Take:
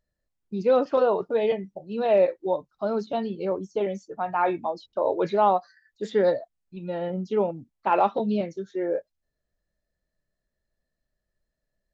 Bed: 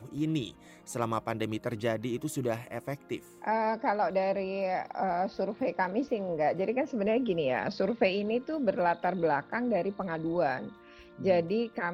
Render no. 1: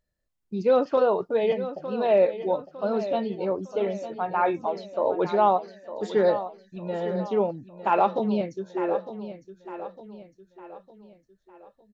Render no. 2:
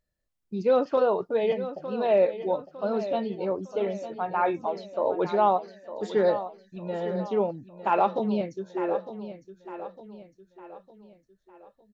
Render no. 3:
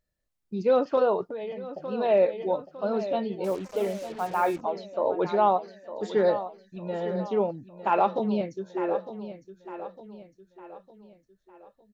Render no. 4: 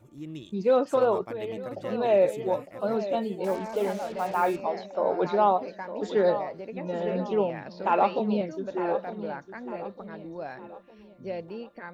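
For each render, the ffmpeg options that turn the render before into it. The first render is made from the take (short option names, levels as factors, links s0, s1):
-af "aecho=1:1:906|1812|2718|3624:0.251|0.111|0.0486|0.0214"
-af "volume=0.841"
-filter_complex "[0:a]asettb=1/sr,asplit=3[s0][s1][s2];[s0]atrim=end=1.234[s3];[s1]atrim=start=1.23:end=1.71,asetpts=PTS-STARTPTS,afade=t=in:d=0.004:c=qsin,afade=t=out:st=0.476:d=0.004:c=qsin,acompressor=threshold=0.0251:ratio=6:attack=3.2:release=140:knee=1:detection=peak[s4];[s2]atrim=start=1.706[s5];[s3][s4]acrossfade=d=0.004:c1=hsin:c2=qsin[s6];[s6][s5]acrossfade=d=0.004:c1=qsin:c2=hsin,asettb=1/sr,asplit=3[s7][s8][s9];[s7]atrim=end=3.444[s10];[s8]atrim=start=3.44:end=4.61,asetpts=PTS-STARTPTS,afade=t=in:d=0.004:c=qsin,afade=t=out:st=1.166:d=0.004:c=qsin,acrusher=bits=6:mix=0:aa=0.5[s11];[s9]atrim=start=4.606[s12];[s10][s11]acrossfade=d=0.004:c1=hsin:c2=qsin[s13];[s13][s12]acrossfade=d=0.004:c1=qsin:c2=hsin"
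-filter_complex "[1:a]volume=0.355[s0];[0:a][s0]amix=inputs=2:normalize=0"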